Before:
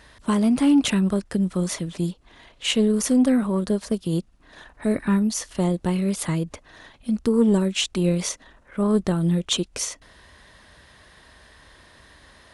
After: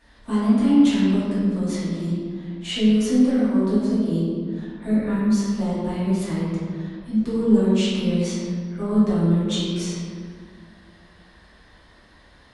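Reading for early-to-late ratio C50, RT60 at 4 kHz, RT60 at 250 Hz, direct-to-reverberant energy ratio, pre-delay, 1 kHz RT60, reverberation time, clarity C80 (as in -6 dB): -2.5 dB, 1.2 s, 2.9 s, -11.5 dB, 3 ms, 1.8 s, 2.0 s, 0.0 dB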